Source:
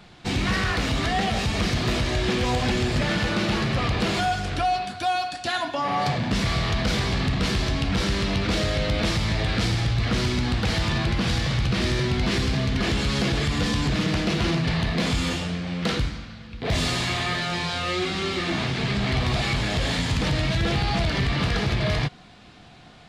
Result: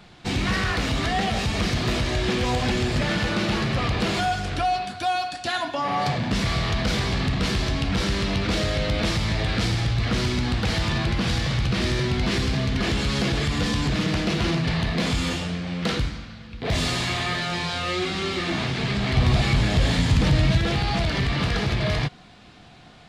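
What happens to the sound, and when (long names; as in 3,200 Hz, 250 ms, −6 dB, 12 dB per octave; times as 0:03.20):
0:19.17–0:20.58: low-shelf EQ 270 Hz +7 dB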